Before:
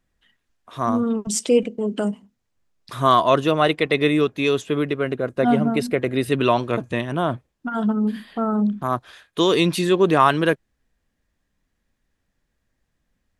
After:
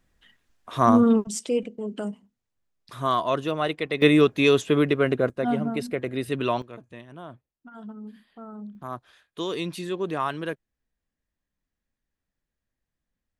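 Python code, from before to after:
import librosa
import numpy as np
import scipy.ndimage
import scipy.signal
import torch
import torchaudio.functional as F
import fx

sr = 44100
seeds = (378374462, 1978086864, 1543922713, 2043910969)

y = fx.gain(x, sr, db=fx.steps((0.0, 4.0), (1.24, -8.0), (4.02, 1.5), (5.3, -7.0), (6.62, -19.0), (8.75, -12.0)))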